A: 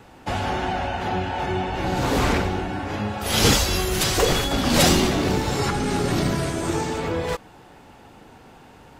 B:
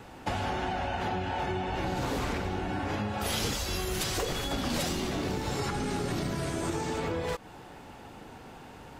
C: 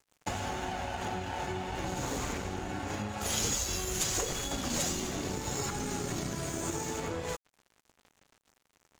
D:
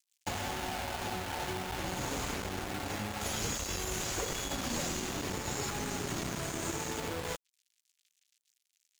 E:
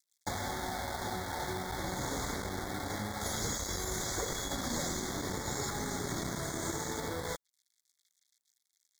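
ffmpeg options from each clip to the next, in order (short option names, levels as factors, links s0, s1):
-af "acompressor=threshold=0.0398:ratio=10"
-af "equalizer=f=6800:w=3.9:g=15,aeval=exprs='sgn(val(0))*max(abs(val(0))-0.00944,0)':c=same,volume=0.841"
-filter_complex "[0:a]acrossover=split=2600[s0][s1];[s0]acrusher=bits=5:mix=0:aa=0.000001[s2];[s1]alimiter=level_in=1.58:limit=0.0631:level=0:latency=1,volume=0.631[s3];[s2][s3]amix=inputs=2:normalize=0,volume=0.794"
-af "asuperstop=centerf=2700:order=20:qfactor=2.6"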